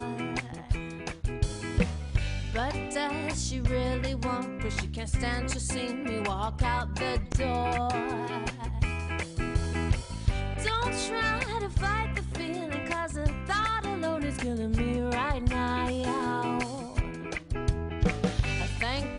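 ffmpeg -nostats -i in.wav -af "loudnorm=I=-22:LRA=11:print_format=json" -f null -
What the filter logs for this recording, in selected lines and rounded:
"input_i" : "-30.7",
"input_tp" : "-11.9",
"input_lra" : "1.2",
"input_thresh" : "-40.7",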